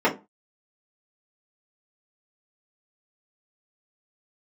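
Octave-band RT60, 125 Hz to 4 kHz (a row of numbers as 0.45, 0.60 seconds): 0.30, 0.30, 0.25, 0.30, 0.20, 0.15 seconds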